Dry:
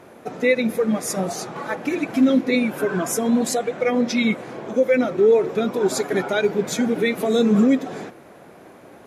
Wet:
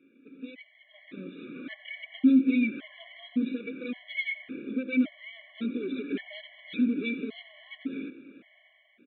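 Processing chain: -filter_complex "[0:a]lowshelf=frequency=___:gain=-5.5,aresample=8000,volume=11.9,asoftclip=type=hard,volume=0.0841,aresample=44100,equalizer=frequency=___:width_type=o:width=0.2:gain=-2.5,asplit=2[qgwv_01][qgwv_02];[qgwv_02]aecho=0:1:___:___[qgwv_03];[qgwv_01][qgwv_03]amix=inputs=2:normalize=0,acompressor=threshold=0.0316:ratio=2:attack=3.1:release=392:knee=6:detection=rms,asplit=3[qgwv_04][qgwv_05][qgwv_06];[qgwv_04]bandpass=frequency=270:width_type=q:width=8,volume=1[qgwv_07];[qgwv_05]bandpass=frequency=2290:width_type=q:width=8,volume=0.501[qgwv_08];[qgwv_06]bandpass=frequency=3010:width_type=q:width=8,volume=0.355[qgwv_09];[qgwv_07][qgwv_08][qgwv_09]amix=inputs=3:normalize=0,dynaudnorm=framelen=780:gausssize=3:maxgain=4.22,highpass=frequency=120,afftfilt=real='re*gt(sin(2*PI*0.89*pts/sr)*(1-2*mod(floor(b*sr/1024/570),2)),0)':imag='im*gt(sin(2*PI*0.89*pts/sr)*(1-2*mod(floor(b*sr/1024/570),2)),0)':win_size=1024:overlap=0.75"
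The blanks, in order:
440, 1500, 89, 0.141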